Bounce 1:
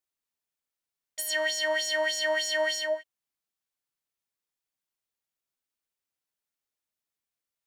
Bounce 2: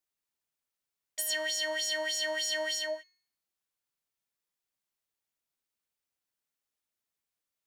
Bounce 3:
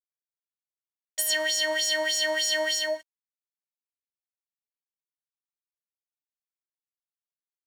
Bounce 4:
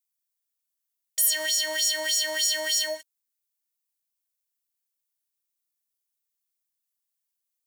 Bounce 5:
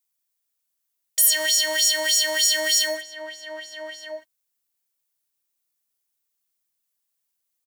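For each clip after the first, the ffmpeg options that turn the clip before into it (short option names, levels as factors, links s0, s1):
-filter_complex "[0:a]acrossover=split=310|3000[s0][s1][s2];[s1]acompressor=threshold=0.0112:ratio=2[s3];[s0][s3][s2]amix=inputs=3:normalize=0,bandreject=f=363:t=h:w=4,bandreject=f=726:t=h:w=4,bandreject=f=1089:t=h:w=4,bandreject=f=1452:t=h:w=4,bandreject=f=1815:t=h:w=4,bandreject=f=2178:t=h:w=4,bandreject=f=2541:t=h:w=4,bandreject=f=2904:t=h:w=4,bandreject=f=3267:t=h:w=4,bandreject=f=3630:t=h:w=4,bandreject=f=3993:t=h:w=4,bandreject=f=4356:t=h:w=4,bandreject=f=4719:t=h:w=4,bandreject=f=5082:t=h:w=4,bandreject=f=5445:t=h:w=4,bandreject=f=5808:t=h:w=4,bandreject=f=6171:t=h:w=4,bandreject=f=6534:t=h:w=4,bandreject=f=6897:t=h:w=4"
-af "aeval=exprs='sgn(val(0))*max(abs(val(0))-0.00251,0)':c=same,volume=2.24"
-af "alimiter=limit=0.0891:level=0:latency=1:release=92,crystalizer=i=4.5:c=0,volume=0.668"
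-filter_complex "[0:a]asplit=2[s0][s1];[s1]adelay=1224,volume=0.501,highshelf=f=4000:g=-27.6[s2];[s0][s2]amix=inputs=2:normalize=0,volume=1.78"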